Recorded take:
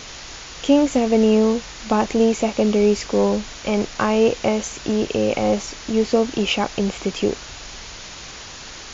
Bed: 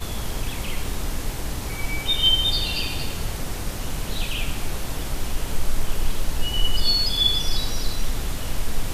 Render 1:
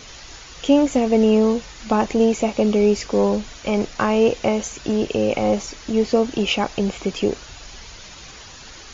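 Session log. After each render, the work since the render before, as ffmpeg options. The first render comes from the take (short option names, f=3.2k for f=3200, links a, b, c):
-af "afftdn=nr=7:nf=-37"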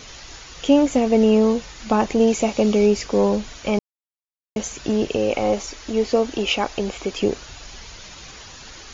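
-filter_complex "[0:a]asettb=1/sr,asplit=3[a][b][c];[a]atrim=end=2.274[d];[b]atrim=start=2.27:end=2.87,asetpts=PTS-STARTPTS,afade=t=in:d=0.004:c=qsin,afade=t=out:st=0.596:d=0.004:c=qsin,highshelf=f=4.3k:g=5.5[e];[c]atrim=start=2.866[f];[d][e]acrossfade=d=0.004:c1=hsin:c2=qsin[g];[g][f]acrossfade=d=0.004:c1=qsin:c2=hsin,asettb=1/sr,asplit=3[h][i][j];[h]atrim=end=5.164[k];[i]atrim=start=5.16:end=7.19,asetpts=PTS-STARTPTS,afade=t=in:d=0.004:c=qsin,afade=t=out:st=2.026:d=0.004:c=qsin,equalizer=f=160:w=2.1:g=-11.5[l];[j]atrim=start=7.186[m];[k][l]acrossfade=d=0.004:c1=hsin:c2=qsin[n];[n][m]acrossfade=d=0.004:c1=qsin:c2=hsin,asplit=3[o][p][q];[o]atrim=end=3.79,asetpts=PTS-STARTPTS,afade=t=out:st=3.786:d=0.004:c=hsin[r];[p]atrim=start=3.79:end=4.56,asetpts=PTS-STARTPTS,volume=0[s];[q]atrim=start=4.56,asetpts=PTS-STARTPTS,afade=t=in:d=0.004:c=hsin[t];[r][s][t]concat=n=3:v=0:a=1"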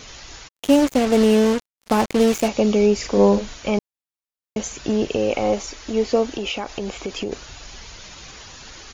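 -filter_complex "[0:a]asplit=3[a][b][c];[a]afade=t=out:st=0.47:d=0.02[d];[b]acrusher=bits=3:mix=0:aa=0.5,afade=t=in:st=0.47:d=0.02,afade=t=out:st=2.47:d=0.02[e];[c]afade=t=in:st=2.47:d=0.02[f];[d][e][f]amix=inputs=3:normalize=0,asplit=3[g][h][i];[g]afade=t=out:st=3.01:d=0.02[j];[h]asplit=2[k][l];[l]adelay=40,volume=-4dB[m];[k][m]amix=inputs=2:normalize=0,afade=t=in:st=3.01:d=0.02,afade=t=out:st=3.54:d=0.02[n];[i]afade=t=in:st=3.54:d=0.02[o];[j][n][o]amix=inputs=3:normalize=0,asettb=1/sr,asplit=3[p][q][r];[p]atrim=end=6.294[s];[q]atrim=start=6.29:end=7.32,asetpts=PTS-STARTPTS,afade=t=in:d=0.004:c=qsin,afade=t=out:st=1.026:d=0.004:c=qsin,acompressor=threshold=-22dB:ratio=6:attack=3.2:release=140:knee=1:detection=peak[t];[r]atrim=start=7.316[u];[s][t]acrossfade=d=0.004:c1=hsin:c2=qsin[v];[v][u]acrossfade=d=0.004:c1=qsin:c2=hsin"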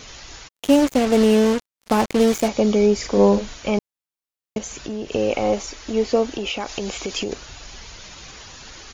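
-filter_complex "[0:a]asettb=1/sr,asplit=3[a][b][c];[a]atrim=end=2.254[d];[b]atrim=start=2.25:end=3.12,asetpts=PTS-STARTPTS,afade=t=in:d=0.004:c=qsin,afade=t=out:st=0.866:d=0.004:c=qsin,bandreject=f=2.7k:w=10[e];[c]atrim=start=3.116[f];[d][e]acrossfade=d=0.004:c1=hsin:c2=qsin[g];[g][f]acrossfade=d=0.004:c1=qsin:c2=hsin,asettb=1/sr,asplit=3[h][i][j];[h]atrim=end=4.584[k];[i]atrim=start=4.58:end=5.12,asetpts=PTS-STARTPTS,afade=t=in:d=0.004:c=qsin,afade=t=out:st=0.536:d=0.004:c=qsin,acompressor=threshold=-29dB:ratio=2.5:attack=3.2:release=140:knee=1:detection=peak[l];[j]atrim=start=5.116[m];[k][l]acrossfade=d=0.004:c1=hsin:c2=qsin[n];[n][m]acrossfade=d=0.004:c1=qsin:c2=hsin,asettb=1/sr,asplit=3[o][p][q];[o]atrim=end=6.604[r];[p]atrim=start=6.6:end=7.33,asetpts=PTS-STARTPTS,afade=t=in:d=0.004:c=qsin,afade=t=out:st=0.726:d=0.004:c=qsin,highshelf=f=3.1k:g=8.5[s];[q]atrim=start=7.326[t];[r][s]acrossfade=d=0.004:c1=hsin:c2=qsin[u];[u][t]acrossfade=d=0.004:c1=qsin:c2=hsin"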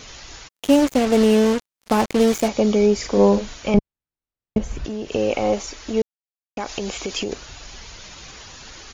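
-filter_complex "[0:a]asettb=1/sr,asplit=3[a][b][c];[a]atrim=end=3.744[d];[b]atrim=start=3.74:end=4.85,asetpts=PTS-STARTPTS,afade=t=in:d=0.004:c=qsin,afade=t=out:st=1.106:d=0.004:c=qsin,aemphasis=mode=reproduction:type=riaa[e];[c]atrim=start=4.846[f];[d][e]acrossfade=d=0.004:c1=hsin:c2=qsin[g];[g][f]acrossfade=d=0.004:c1=qsin:c2=hsin,asplit=3[h][i][j];[h]atrim=end=6.02,asetpts=PTS-STARTPTS,afade=t=out:st=6.016:d=0.004:c=hsin[k];[i]atrim=start=6.02:end=6.57,asetpts=PTS-STARTPTS,volume=0[l];[j]atrim=start=6.57,asetpts=PTS-STARTPTS,afade=t=in:d=0.004:c=hsin[m];[k][l][m]concat=n=3:v=0:a=1"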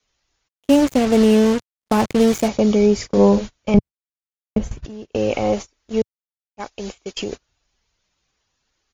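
-af "agate=range=-32dB:threshold=-26dB:ratio=16:detection=peak,adynamicequalizer=threshold=0.0224:dfrequency=110:dqfactor=0.85:tfrequency=110:tqfactor=0.85:attack=5:release=100:ratio=0.375:range=3.5:mode=boostabove:tftype=bell"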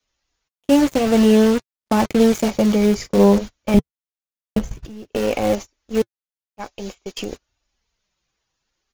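-filter_complex "[0:a]asplit=2[a][b];[b]acrusher=bits=4:dc=4:mix=0:aa=0.000001,volume=-5dB[c];[a][c]amix=inputs=2:normalize=0,flanger=delay=3.3:depth=2.9:regen=-53:speed=0.53:shape=sinusoidal"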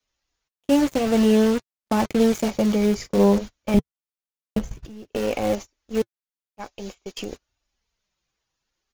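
-af "volume=-4dB"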